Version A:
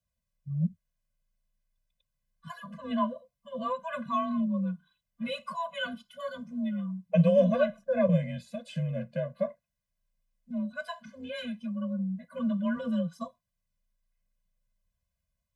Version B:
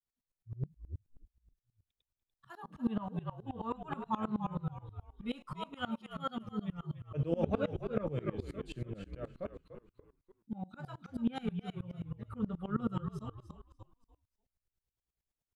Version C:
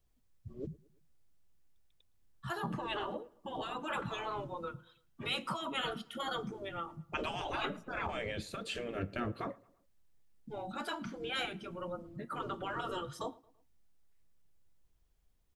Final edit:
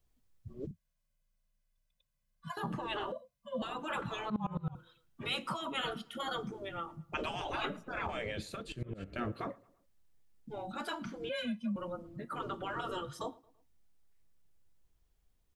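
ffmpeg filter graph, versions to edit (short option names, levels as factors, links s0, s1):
-filter_complex "[0:a]asplit=3[s0][s1][s2];[1:a]asplit=2[s3][s4];[2:a]asplit=6[s5][s6][s7][s8][s9][s10];[s5]atrim=end=0.712[s11];[s0]atrim=start=0.708:end=2.572[s12];[s6]atrim=start=2.568:end=3.122[s13];[s1]atrim=start=3.118:end=3.622[s14];[s7]atrim=start=3.618:end=4.302[s15];[s3]atrim=start=4.298:end=4.752[s16];[s8]atrim=start=4.748:end=8.77[s17];[s4]atrim=start=8.53:end=9.21[s18];[s9]atrim=start=8.97:end=11.292[s19];[s2]atrim=start=11.288:end=11.762[s20];[s10]atrim=start=11.758[s21];[s11][s12]acrossfade=d=0.004:c1=hsin:c2=hsin[s22];[s22][s13]acrossfade=d=0.004:c1=hsin:c2=hsin[s23];[s23][s14]acrossfade=d=0.004:c1=hsin:c2=hsin[s24];[s24][s15]acrossfade=d=0.004:c1=hsin:c2=hsin[s25];[s25][s16]acrossfade=d=0.004:c1=hsin:c2=hsin[s26];[s26][s17]acrossfade=d=0.004:c1=hsin:c2=hsin[s27];[s27][s18]acrossfade=d=0.24:c1=tri:c2=tri[s28];[s28][s19]acrossfade=d=0.24:c1=tri:c2=tri[s29];[s29][s20]acrossfade=d=0.004:c1=hsin:c2=hsin[s30];[s30][s21]acrossfade=d=0.004:c1=hsin:c2=hsin"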